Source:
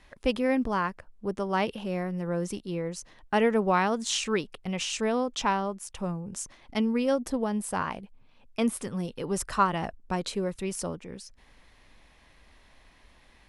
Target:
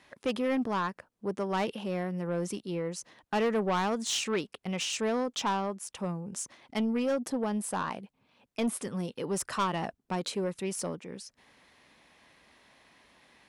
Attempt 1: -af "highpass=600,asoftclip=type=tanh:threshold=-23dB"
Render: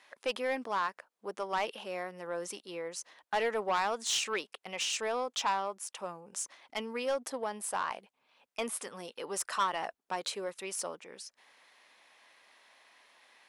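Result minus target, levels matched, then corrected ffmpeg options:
125 Hz band −15.5 dB
-af "highpass=150,asoftclip=type=tanh:threshold=-23dB"

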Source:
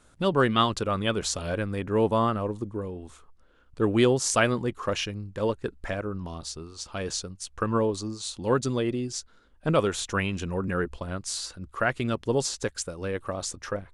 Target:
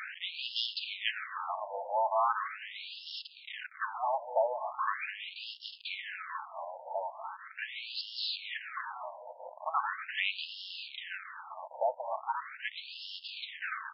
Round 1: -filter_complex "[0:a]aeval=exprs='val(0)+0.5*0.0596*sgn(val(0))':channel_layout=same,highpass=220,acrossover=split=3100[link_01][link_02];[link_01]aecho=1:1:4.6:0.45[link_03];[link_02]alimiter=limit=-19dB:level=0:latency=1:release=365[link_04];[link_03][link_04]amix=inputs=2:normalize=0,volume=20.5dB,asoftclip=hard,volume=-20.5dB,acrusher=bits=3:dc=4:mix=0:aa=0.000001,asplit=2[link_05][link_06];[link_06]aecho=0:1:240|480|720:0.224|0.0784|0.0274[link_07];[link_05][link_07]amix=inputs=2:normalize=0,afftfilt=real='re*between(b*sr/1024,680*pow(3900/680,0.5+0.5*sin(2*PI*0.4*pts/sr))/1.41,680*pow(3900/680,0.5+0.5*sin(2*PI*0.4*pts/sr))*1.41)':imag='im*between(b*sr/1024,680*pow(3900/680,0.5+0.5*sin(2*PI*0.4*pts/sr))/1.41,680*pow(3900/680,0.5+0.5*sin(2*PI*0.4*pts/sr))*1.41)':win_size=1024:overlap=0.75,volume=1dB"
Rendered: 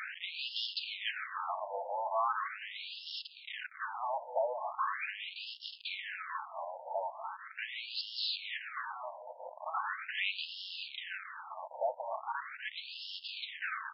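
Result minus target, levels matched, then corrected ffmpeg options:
gain into a clipping stage and back: distortion +14 dB
-filter_complex "[0:a]aeval=exprs='val(0)+0.5*0.0596*sgn(val(0))':channel_layout=same,highpass=220,acrossover=split=3100[link_01][link_02];[link_01]aecho=1:1:4.6:0.45[link_03];[link_02]alimiter=limit=-19dB:level=0:latency=1:release=365[link_04];[link_03][link_04]amix=inputs=2:normalize=0,volume=12dB,asoftclip=hard,volume=-12dB,acrusher=bits=3:dc=4:mix=0:aa=0.000001,asplit=2[link_05][link_06];[link_06]aecho=0:1:240|480|720:0.224|0.0784|0.0274[link_07];[link_05][link_07]amix=inputs=2:normalize=0,afftfilt=real='re*between(b*sr/1024,680*pow(3900/680,0.5+0.5*sin(2*PI*0.4*pts/sr))/1.41,680*pow(3900/680,0.5+0.5*sin(2*PI*0.4*pts/sr))*1.41)':imag='im*between(b*sr/1024,680*pow(3900/680,0.5+0.5*sin(2*PI*0.4*pts/sr))/1.41,680*pow(3900/680,0.5+0.5*sin(2*PI*0.4*pts/sr))*1.41)':win_size=1024:overlap=0.75,volume=1dB"

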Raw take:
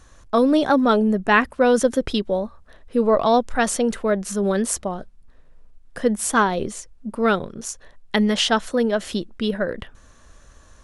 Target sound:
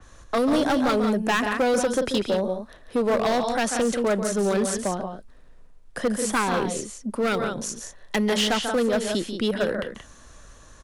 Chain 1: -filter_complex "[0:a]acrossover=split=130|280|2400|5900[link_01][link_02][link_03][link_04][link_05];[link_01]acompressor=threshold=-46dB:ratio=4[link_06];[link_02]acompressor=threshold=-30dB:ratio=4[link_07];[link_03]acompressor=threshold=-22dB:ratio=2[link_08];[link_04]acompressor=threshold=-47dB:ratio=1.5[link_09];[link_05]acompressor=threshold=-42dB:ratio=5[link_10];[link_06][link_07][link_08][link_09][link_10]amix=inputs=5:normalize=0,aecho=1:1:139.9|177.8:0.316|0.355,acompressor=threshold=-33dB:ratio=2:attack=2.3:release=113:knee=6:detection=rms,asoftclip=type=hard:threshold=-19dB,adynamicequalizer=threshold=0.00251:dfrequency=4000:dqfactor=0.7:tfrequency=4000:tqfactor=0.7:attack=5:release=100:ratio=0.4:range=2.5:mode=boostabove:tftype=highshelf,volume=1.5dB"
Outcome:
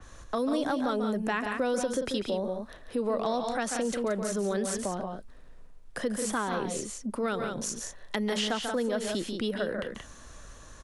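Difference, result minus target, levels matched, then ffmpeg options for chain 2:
downward compressor: peak gain reduction +11.5 dB
-filter_complex "[0:a]acrossover=split=130|280|2400|5900[link_01][link_02][link_03][link_04][link_05];[link_01]acompressor=threshold=-46dB:ratio=4[link_06];[link_02]acompressor=threshold=-30dB:ratio=4[link_07];[link_03]acompressor=threshold=-22dB:ratio=2[link_08];[link_04]acompressor=threshold=-47dB:ratio=1.5[link_09];[link_05]acompressor=threshold=-42dB:ratio=5[link_10];[link_06][link_07][link_08][link_09][link_10]amix=inputs=5:normalize=0,aecho=1:1:139.9|177.8:0.316|0.355,asoftclip=type=hard:threshold=-19dB,adynamicequalizer=threshold=0.00251:dfrequency=4000:dqfactor=0.7:tfrequency=4000:tqfactor=0.7:attack=5:release=100:ratio=0.4:range=2.5:mode=boostabove:tftype=highshelf,volume=1.5dB"

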